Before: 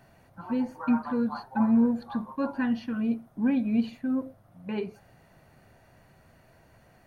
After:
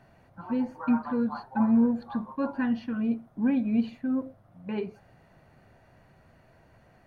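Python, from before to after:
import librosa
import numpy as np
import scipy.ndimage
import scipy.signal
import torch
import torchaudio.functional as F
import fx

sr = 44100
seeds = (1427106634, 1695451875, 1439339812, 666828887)

y = fx.lowpass(x, sr, hz=3400.0, slope=6)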